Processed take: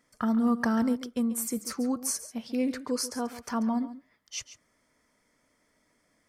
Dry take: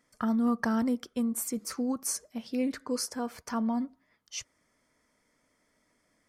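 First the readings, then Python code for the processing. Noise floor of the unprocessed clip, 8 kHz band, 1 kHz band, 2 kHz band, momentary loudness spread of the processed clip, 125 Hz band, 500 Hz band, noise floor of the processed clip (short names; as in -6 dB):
-73 dBFS, +1.5 dB, +1.5 dB, +1.5 dB, 13 LU, n/a, +1.5 dB, -71 dBFS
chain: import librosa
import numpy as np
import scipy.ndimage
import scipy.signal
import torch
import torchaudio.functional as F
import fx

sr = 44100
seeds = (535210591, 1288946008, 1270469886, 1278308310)

y = x + 10.0 ** (-14.0 / 20.0) * np.pad(x, (int(139 * sr / 1000.0), 0))[:len(x)]
y = F.gain(torch.from_numpy(y), 1.5).numpy()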